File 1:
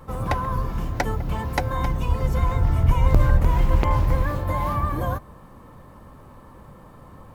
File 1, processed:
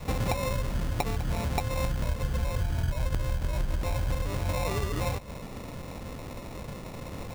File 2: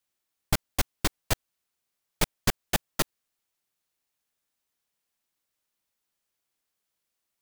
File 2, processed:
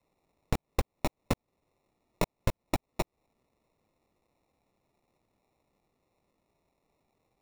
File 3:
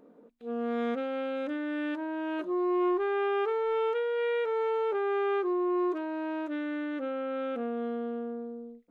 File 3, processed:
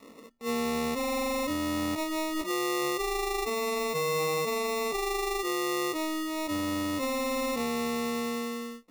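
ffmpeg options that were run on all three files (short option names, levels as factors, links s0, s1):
-af "acompressor=threshold=0.0282:ratio=10,acrusher=samples=28:mix=1:aa=0.000001,adynamicequalizer=threshold=0.00316:dfrequency=370:dqfactor=2.9:tfrequency=370:tqfactor=2.9:attack=5:release=100:ratio=0.375:range=2.5:mode=cutabove:tftype=bell,volume=2"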